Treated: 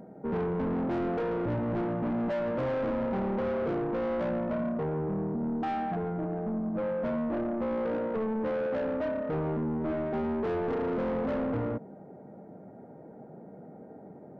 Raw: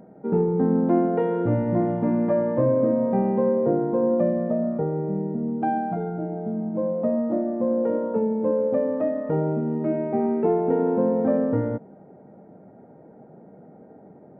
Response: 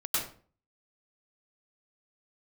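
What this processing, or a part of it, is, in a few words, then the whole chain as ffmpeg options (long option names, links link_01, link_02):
saturation between pre-emphasis and de-emphasis: -af "highshelf=frequency=2200:gain=10.5,asoftclip=type=tanh:threshold=-27.5dB,highshelf=frequency=2200:gain=-10.5"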